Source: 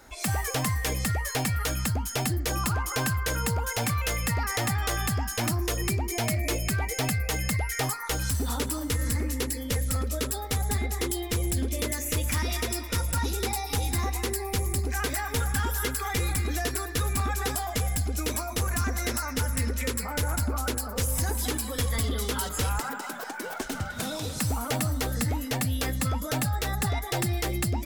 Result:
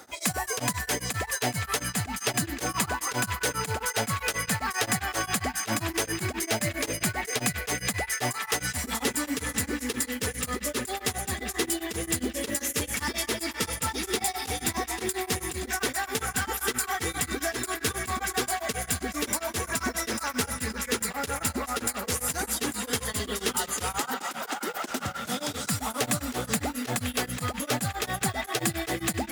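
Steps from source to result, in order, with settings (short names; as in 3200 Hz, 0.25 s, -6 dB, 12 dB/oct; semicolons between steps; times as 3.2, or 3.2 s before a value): HPF 160 Hz 12 dB/oct; bell 7900 Hz +2 dB; in parallel at -2 dB: limiter -31.5 dBFS, peak gain reduction 15.5 dB; on the sum: varispeed -5%; short-mantissa float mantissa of 2-bit; on a send: narrowing echo 0.521 s, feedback 83%, band-pass 2100 Hz, level -6.5 dB; on the sum: beating tremolo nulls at 7.5 Hz; gain +1.5 dB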